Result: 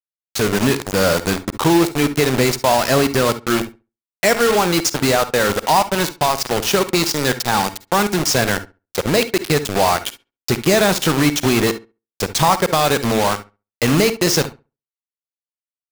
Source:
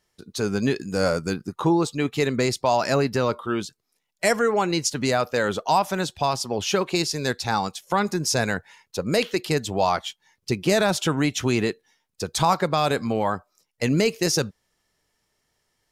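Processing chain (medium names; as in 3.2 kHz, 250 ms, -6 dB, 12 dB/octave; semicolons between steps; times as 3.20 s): low-pass 8.7 kHz; in parallel at -3 dB: compression 6:1, threshold -29 dBFS, peak gain reduction 14 dB; on the sum: bit crusher 4-bit; filtered feedback delay 68 ms, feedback 19%, low-pass 2.2 kHz, level -15.5 dB; reverberation, pre-delay 46 ms, DRR 14.5 dB; trim +3.5 dB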